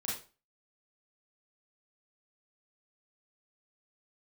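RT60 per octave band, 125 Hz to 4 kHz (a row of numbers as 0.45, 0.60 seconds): 0.40, 0.35, 0.35, 0.35, 0.30, 0.30 seconds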